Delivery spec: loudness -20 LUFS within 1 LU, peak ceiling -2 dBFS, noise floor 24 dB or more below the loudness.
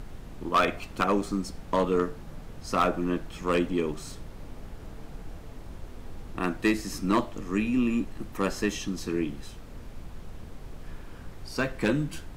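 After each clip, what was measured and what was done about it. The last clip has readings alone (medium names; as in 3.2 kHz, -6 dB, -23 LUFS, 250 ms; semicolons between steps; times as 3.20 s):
clipped samples 0.3%; clipping level -16.0 dBFS; noise floor -44 dBFS; noise floor target -53 dBFS; loudness -28.5 LUFS; peak level -16.0 dBFS; loudness target -20.0 LUFS
-> clip repair -16 dBFS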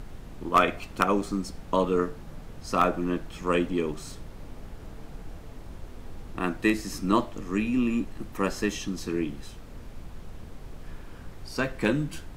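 clipped samples 0.0%; noise floor -44 dBFS; noise floor target -52 dBFS
-> noise print and reduce 8 dB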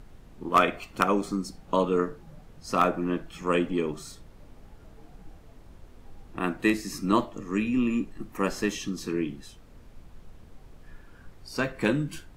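noise floor -52 dBFS; loudness -28.0 LUFS; peak level -7.0 dBFS; loudness target -20.0 LUFS
-> trim +8 dB; peak limiter -2 dBFS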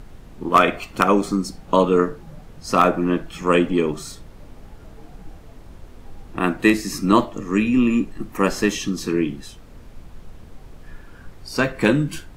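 loudness -20.0 LUFS; peak level -2.0 dBFS; noise floor -44 dBFS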